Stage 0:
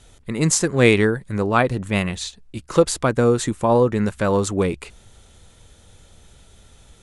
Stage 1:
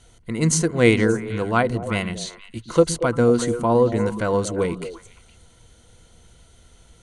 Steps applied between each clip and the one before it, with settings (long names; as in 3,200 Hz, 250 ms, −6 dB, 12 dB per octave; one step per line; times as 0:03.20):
EQ curve with evenly spaced ripples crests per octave 1.9, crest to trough 7 dB
on a send: echo through a band-pass that steps 116 ms, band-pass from 180 Hz, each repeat 1.4 octaves, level −5.5 dB
on the sum: level −3 dB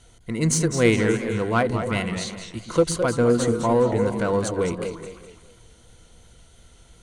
in parallel at −4 dB: soft clipping −20 dBFS, distortion −7 dB
on the sum: feedback echo with a swinging delay time 208 ms, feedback 37%, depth 158 cents, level −9 dB
level −4.5 dB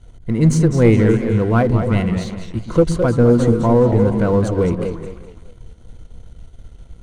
spectral tilt −3 dB per octave
leveller curve on the samples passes 1
level −1.5 dB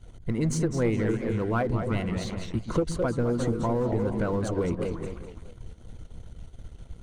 harmonic and percussive parts rebalanced percussive +8 dB
downward compressor 2.5 to 1, threshold −19 dBFS, peak gain reduction 11 dB
level −7.5 dB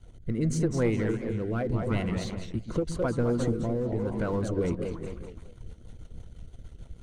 rotating-speaker cabinet horn 0.85 Hz, later 6.3 Hz, at 0:04.16